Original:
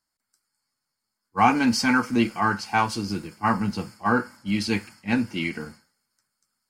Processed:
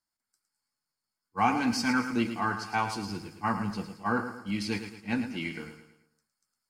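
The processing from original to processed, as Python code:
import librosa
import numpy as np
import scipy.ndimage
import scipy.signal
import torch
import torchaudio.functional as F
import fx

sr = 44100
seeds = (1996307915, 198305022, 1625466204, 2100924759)

y = fx.echo_feedback(x, sr, ms=110, feedback_pct=43, wet_db=-9.5)
y = y * librosa.db_to_amplitude(-7.0)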